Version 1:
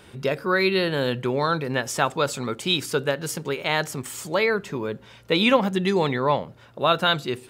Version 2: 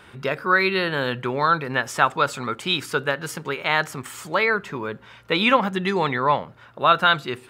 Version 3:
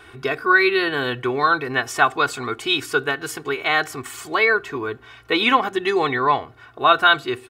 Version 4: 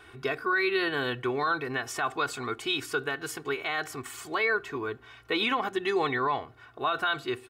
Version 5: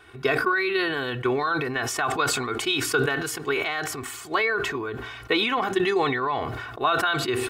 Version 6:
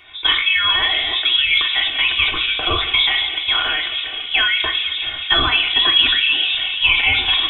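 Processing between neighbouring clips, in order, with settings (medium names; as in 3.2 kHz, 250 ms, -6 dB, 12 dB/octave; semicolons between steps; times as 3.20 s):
FFT filter 540 Hz 0 dB, 1.3 kHz +9 dB, 5.9 kHz -2 dB; trim -2 dB
comb 2.7 ms, depth 84%
peak limiter -11.5 dBFS, peak gain reduction 10 dB; trim -6.5 dB
transient shaper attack +7 dB, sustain +2 dB; decay stretcher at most 34 dB/s
feedback echo behind a band-pass 219 ms, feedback 79%, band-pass 580 Hz, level -7 dB; frequency inversion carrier 3.7 kHz; two-slope reverb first 0.39 s, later 1.6 s, DRR 3.5 dB; trim +5 dB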